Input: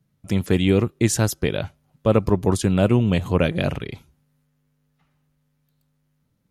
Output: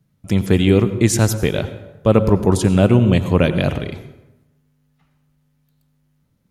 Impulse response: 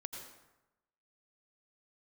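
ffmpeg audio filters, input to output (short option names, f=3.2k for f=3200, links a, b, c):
-filter_complex "[0:a]asplit=2[a][b];[1:a]atrim=start_sample=2205,lowshelf=f=320:g=5[c];[b][c]afir=irnorm=-1:irlink=0,volume=-3dB[d];[a][d]amix=inputs=2:normalize=0"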